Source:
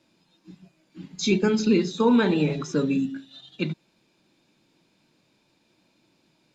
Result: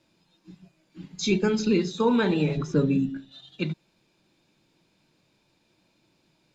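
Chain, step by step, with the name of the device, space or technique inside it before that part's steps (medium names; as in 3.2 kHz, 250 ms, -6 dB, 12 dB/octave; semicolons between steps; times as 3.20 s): 2.57–3.32 s: tilt EQ -2 dB/octave; low shelf boost with a cut just above (bass shelf 100 Hz +7 dB; peaking EQ 250 Hz -4 dB 0.51 oct); trim -1.5 dB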